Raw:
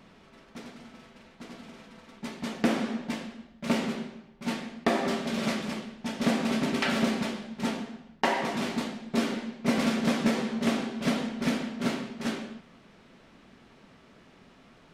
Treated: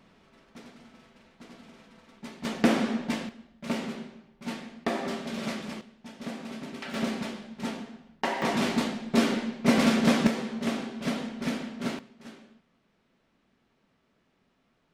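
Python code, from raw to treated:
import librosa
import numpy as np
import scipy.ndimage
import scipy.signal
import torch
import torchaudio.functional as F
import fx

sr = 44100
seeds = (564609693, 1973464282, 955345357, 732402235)

y = fx.gain(x, sr, db=fx.steps((0.0, -4.5), (2.45, 3.0), (3.29, -4.0), (5.81, -11.5), (6.94, -3.5), (8.42, 4.0), (10.27, -3.0), (11.99, -15.0)))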